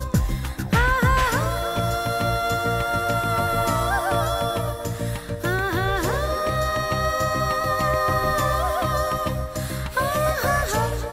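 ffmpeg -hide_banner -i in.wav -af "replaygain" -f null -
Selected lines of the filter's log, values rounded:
track_gain = +6.3 dB
track_peak = 0.257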